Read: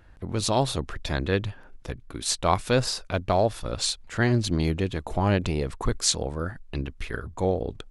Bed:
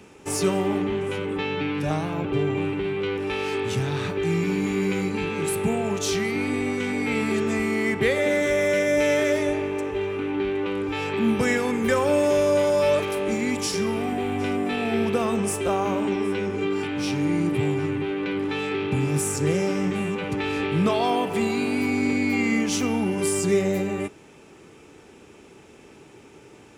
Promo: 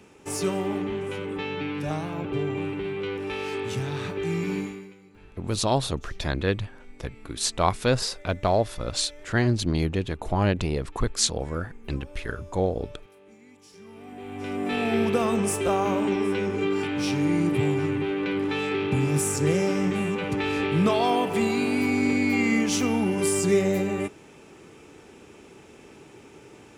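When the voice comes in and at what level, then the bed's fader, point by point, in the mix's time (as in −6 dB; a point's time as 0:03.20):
5.15 s, 0.0 dB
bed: 0:04.59 −4 dB
0:04.98 −27.5 dB
0:13.62 −27.5 dB
0:14.76 0 dB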